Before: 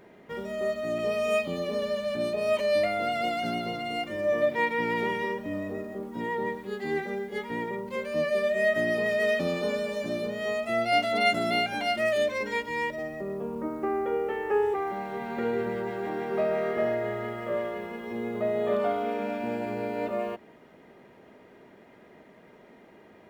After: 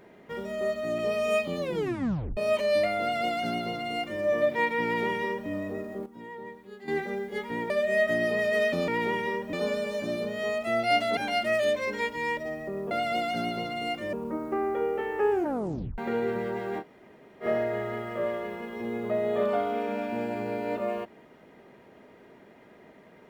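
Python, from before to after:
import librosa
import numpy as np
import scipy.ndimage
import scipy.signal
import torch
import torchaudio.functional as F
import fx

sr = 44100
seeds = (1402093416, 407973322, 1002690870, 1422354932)

y = fx.edit(x, sr, fx.tape_stop(start_s=1.6, length_s=0.77),
    fx.duplicate(start_s=3.0, length_s=1.22, to_s=13.44),
    fx.duplicate(start_s=4.84, length_s=0.65, to_s=9.55),
    fx.clip_gain(start_s=6.06, length_s=0.82, db=-11.0),
    fx.cut(start_s=7.7, length_s=0.67),
    fx.cut(start_s=11.19, length_s=0.51),
    fx.tape_stop(start_s=14.62, length_s=0.67),
    fx.room_tone_fill(start_s=16.12, length_s=0.62, crossfade_s=0.06), tone=tone)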